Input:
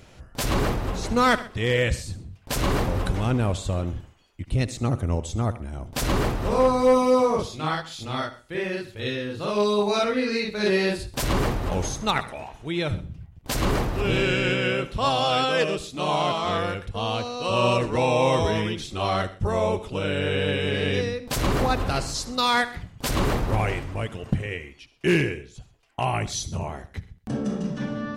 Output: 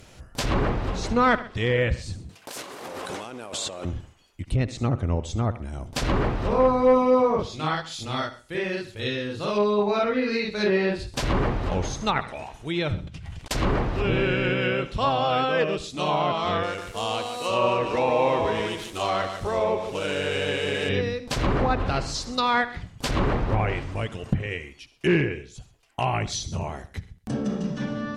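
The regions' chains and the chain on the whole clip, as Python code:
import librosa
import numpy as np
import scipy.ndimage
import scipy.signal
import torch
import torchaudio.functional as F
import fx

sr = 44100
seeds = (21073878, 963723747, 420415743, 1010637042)

y = fx.chain(x, sr, fx.highpass(hz=380.0, slope=12),
    fx.over_compress(threshold_db=-40.0, ratio=-1.0),
    fx.leveller(passes=1), at=(2.29, 3.85))
y = fx.chain(y, sr, fx.curve_eq(hz=(280.0, 3100.0, 9300.0, 13000.0), db=(0, 13, 8, -5)),
    fx.over_compress(threshold_db=-46.0, ratio=-1.0),
    fx.leveller(passes=1), at=(13.07, 13.51))
y = fx.chain(y, sr, fx.median_filter(points=9),
    fx.bass_treble(bass_db=-9, treble_db=6),
    fx.echo_crushed(ms=147, feedback_pct=35, bits=7, wet_db=-7.5), at=(16.63, 20.89))
y = fx.high_shelf(y, sr, hz=5500.0, db=7.5)
y = fx.env_lowpass_down(y, sr, base_hz=2200.0, full_db=-18.5)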